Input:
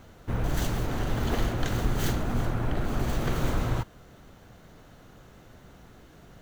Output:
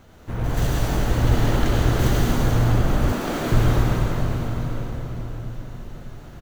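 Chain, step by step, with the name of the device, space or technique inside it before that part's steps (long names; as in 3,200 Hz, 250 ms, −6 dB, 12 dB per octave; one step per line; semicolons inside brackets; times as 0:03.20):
cathedral (convolution reverb RT60 4.9 s, pre-delay 74 ms, DRR −6 dB)
0:03.12–0:03.52: high-pass filter 200 Hz 24 dB per octave
single-tap delay 877 ms −15.5 dB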